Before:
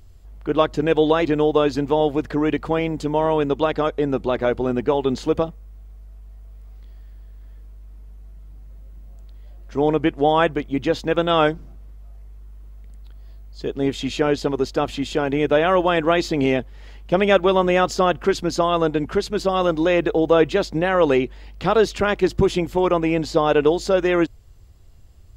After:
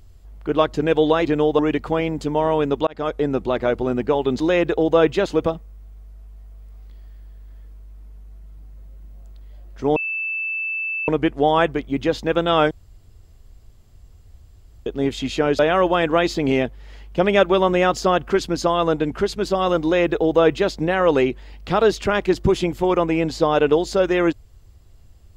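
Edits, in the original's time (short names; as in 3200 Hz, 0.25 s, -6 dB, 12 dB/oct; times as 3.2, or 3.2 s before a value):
1.59–2.38 cut
3.66–3.92 fade in
9.89 add tone 2640 Hz -22.5 dBFS 1.12 s
11.52–13.67 room tone
14.4–15.53 cut
19.77–20.63 copy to 5.19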